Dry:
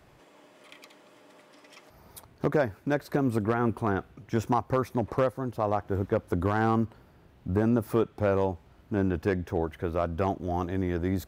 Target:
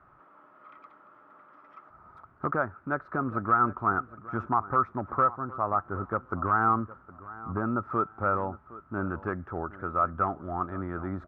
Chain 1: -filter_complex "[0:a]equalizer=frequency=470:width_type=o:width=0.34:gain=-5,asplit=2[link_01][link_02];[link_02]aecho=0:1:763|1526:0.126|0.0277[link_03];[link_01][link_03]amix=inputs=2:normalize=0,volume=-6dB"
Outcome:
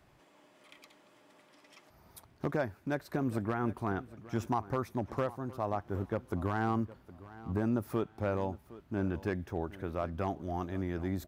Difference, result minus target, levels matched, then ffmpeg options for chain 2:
1,000 Hz band −5.5 dB
-filter_complex "[0:a]lowpass=frequency=1300:width_type=q:width=12,equalizer=frequency=470:width_type=o:width=0.34:gain=-5,asplit=2[link_01][link_02];[link_02]aecho=0:1:763|1526:0.126|0.0277[link_03];[link_01][link_03]amix=inputs=2:normalize=0,volume=-6dB"

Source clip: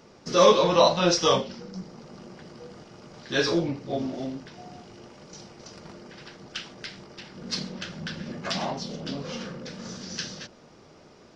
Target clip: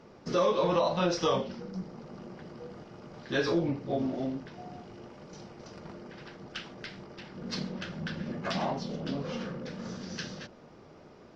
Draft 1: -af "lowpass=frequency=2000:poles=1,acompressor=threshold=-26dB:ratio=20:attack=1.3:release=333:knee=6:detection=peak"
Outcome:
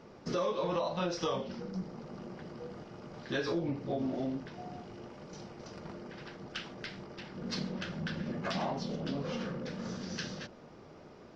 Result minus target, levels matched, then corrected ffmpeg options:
downward compressor: peak gain reduction +6.5 dB
-af "lowpass=frequency=2000:poles=1,acompressor=threshold=-19dB:ratio=20:attack=1.3:release=333:knee=6:detection=peak"

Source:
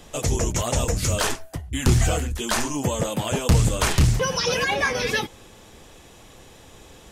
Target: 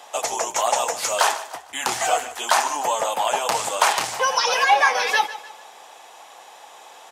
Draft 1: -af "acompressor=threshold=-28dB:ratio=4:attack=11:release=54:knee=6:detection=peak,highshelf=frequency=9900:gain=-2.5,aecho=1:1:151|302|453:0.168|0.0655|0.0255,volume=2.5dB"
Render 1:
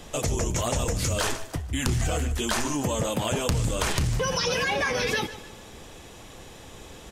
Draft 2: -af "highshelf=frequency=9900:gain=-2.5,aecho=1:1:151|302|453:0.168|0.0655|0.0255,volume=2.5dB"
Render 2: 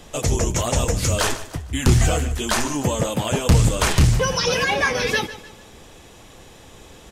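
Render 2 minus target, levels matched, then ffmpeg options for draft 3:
1,000 Hz band −8.5 dB
-af "highpass=frequency=800:width_type=q:width=3.2,highshelf=frequency=9900:gain=-2.5,aecho=1:1:151|302|453:0.168|0.0655|0.0255,volume=2.5dB"

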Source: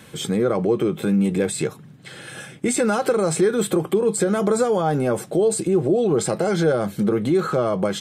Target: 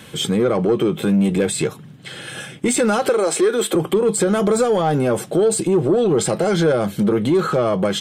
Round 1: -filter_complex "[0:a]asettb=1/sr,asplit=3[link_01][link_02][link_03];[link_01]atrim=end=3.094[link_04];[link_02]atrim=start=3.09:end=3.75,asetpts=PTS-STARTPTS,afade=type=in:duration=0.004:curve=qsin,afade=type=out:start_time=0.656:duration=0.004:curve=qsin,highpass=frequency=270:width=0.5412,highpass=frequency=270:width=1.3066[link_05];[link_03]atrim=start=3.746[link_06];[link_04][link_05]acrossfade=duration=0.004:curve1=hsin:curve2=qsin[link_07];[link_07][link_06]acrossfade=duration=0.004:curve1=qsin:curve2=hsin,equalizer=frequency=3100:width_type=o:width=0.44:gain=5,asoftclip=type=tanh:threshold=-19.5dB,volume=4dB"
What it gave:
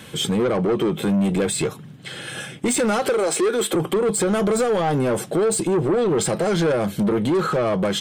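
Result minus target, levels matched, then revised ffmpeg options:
soft clipping: distortion +9 dB
-filter_complex "[0:a]asettb=1/sr,asplit=3[link_01][link_02][link_03];[link_01]atrim=end=3.094[link_04];[link_02]atrim=start=3.09:end=3.75,asetpts=PTS-STARTPTS,afade=type=in:duration=0.004:curve=qsin,afade=type=out:start_time=0.656:duration=0.004:curve=qsin,highpass=frequency=270:width=0.5412,highpass=frequency=270:width=1.3066[link_05];[link_03]atrim=start=3.746[link_06];[link_04][link_05]acrossfade=duration=0.004:curve1=hsin:curve2=qsin[link_07];[link_07][link_06]acrossfade=duration=0.004:curve1=qsin:curve2=hsin,equalizer=frequency=3100:width_type=o:width=0.44:gain=5,asoftclip=type=tanh:threshold=-12.5dB,volume=4dB"

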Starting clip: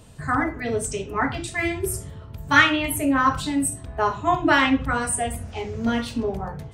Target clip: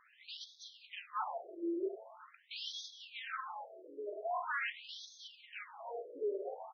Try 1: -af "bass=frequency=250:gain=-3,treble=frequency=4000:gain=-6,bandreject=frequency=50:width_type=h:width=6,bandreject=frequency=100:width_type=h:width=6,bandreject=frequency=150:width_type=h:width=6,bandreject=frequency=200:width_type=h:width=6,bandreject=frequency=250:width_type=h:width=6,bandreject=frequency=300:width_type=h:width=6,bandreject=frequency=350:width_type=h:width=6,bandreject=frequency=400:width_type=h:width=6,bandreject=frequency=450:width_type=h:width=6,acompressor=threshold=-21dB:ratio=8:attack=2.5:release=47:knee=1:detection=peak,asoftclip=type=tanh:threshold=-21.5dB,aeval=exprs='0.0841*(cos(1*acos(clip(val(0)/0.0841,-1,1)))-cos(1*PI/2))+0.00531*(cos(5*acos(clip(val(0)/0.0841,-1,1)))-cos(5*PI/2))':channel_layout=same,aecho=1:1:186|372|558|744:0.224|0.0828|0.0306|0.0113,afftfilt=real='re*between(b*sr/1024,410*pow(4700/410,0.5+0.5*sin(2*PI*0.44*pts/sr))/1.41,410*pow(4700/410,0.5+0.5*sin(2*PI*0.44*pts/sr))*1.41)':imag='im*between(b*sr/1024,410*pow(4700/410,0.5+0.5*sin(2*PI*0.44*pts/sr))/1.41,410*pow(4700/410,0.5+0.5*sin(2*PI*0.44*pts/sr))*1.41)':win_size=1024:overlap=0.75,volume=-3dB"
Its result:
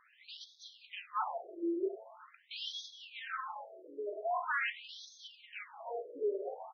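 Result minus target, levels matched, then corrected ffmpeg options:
soft clipping: distortion −8 dB
-af "bass=frequency=250:gain=-3,treble=frequency=4000:gain=-6,bandreject=frequency=50:width_type=h:width=6,bandreject=frequency=100:width_type=h:width=6,bandreject=frequency=150:width_type=h:width=6,bandreject=frequency=200:width_type=h:width=6,bandreject=frequency=250:width_type=h:width=6,bandreject=frequency=300:width_type=h:width=6,bandreject=frequency=350:width_type=h:width=6,bandreject=frequency=400:width_type=h:width=6,bandreject=frequency=450:width_type=h:width=6,acompressor=threshold=-21dB:ratio=8:attack=2.5:release=47:knee=1:detection=peak,asoftclip=type=tanh:threshold=-29dB,aeval=exprs='0.0841*(cos(1*acos(clip(val(0)/0.0841,-1,1)))-cos(1*PI/2))+0.00531*(cos(5*acos(clip(val(0)/0.0841,-1,1)))-cos(5*PI/2))':channel_layout=same,aecho=1:1:186|372|558|744:0.224|0.0828|0.0306|0.0113,afftfilt=real='re*between(b*sr/1024,410*pow(4700/410,0.5+0.5*sin(2*PI*0.44*pts/sr))/1.41,410*pow(4700/410,0.5+0.5*sin(2*PI*0.44*pts/sr))*1.41)':imag='im*between(b*sr/1024,410*pow(4700/410,0.5+0.5*sin(2*PI*0.44*pts/sr))/1.41,410*pow(4700/410,0.5+0.5*sin(2*PI*0.44*pts/sr))*1.41)':win_size=1024:overlap=0.75,volume=-3dB"

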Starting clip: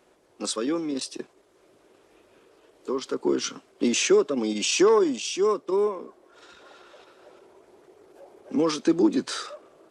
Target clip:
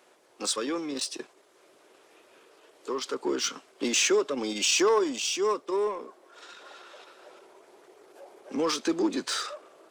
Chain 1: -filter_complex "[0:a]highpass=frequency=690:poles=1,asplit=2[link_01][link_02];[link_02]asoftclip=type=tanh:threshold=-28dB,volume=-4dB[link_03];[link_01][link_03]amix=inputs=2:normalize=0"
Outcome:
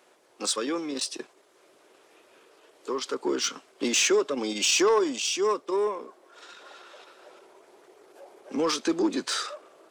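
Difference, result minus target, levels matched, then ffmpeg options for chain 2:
soft clipping: distortion −5 dB
-filter_complex "[0:a]highpass=frequency=690:poles=1,asplit=2[link_01][link_02];[link_02]asoftclip=type=tanh:threshold=-36.5dB,volume=-4dB[link_03];[link_01][link_03]amix=inputs=2:normalize=0"

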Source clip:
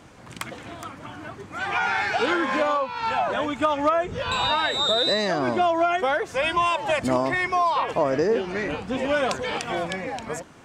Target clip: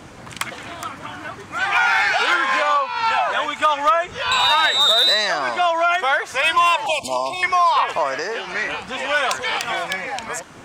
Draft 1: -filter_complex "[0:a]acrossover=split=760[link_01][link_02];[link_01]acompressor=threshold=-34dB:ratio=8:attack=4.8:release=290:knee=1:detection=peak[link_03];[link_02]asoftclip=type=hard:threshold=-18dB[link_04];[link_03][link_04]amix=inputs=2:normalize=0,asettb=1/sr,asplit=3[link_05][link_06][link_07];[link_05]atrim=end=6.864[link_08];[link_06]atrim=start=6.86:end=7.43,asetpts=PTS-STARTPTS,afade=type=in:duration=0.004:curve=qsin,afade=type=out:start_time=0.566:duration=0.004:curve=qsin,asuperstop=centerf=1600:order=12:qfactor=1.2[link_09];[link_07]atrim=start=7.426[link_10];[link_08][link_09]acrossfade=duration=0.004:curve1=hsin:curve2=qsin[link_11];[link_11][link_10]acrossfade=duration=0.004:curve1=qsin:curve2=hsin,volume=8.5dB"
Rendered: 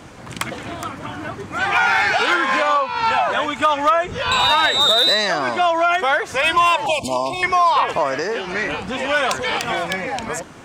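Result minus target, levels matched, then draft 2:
downward compressor: peak gain reduction −9 dB
-filter_complex "[0:a]acrossover=split=760[link_01][link_02];[link_01]acompressor=threshold=-44.5dB:ratio=8:attack=4.8:release=290:knee=1:detection=peak[link_03];[link_02]asoftclip=type=hard:threshold=-18dB[link_04];[link_03][link_04]amix=inputs=2:normalize=0,asettb=1/sr,asplit=3[link_05][link_06][link_07];[link_05]atrim=end=6.864[link_08];[link_06]atrim=start=6.86:end=7.43,asetpts=PTS-STARTPTS,afade=type=in:duration=0.004:curve=qsin,afade=type=out:start_time=0.566:duration=0.004:curve=qsin,asuperstop=centerf=1600:order=12:qfactor=1.2[link_09];[link_07]atrim=start=7.426[link_10];[link_08][link_09]acrossfade=duration=0.004:curve1=hsin:curve2=qsin[link_11];[link_11][link_10]acrossfade=duration=0.004:curve1=qsin:curve2=hsin,volume=8.5dB"

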